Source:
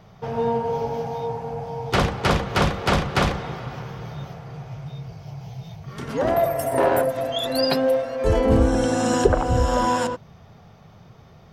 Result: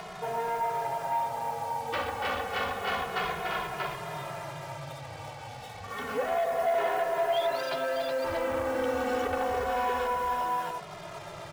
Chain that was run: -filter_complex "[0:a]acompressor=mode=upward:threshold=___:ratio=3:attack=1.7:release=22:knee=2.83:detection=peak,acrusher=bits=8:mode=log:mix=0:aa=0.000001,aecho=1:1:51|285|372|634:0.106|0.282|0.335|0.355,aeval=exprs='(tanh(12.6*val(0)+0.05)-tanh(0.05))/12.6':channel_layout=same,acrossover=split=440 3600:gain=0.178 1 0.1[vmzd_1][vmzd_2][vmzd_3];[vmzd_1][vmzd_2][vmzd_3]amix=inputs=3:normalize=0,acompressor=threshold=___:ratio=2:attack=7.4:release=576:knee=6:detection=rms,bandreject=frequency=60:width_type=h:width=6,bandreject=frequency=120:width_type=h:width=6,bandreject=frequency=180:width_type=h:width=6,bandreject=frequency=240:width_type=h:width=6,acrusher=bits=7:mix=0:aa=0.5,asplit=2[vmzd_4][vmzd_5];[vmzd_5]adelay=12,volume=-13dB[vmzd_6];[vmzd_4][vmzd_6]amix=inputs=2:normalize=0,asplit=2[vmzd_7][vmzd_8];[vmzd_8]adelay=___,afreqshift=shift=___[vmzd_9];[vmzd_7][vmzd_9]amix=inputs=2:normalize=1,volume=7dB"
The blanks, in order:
-33dB, -34dB, 2.4, -0.29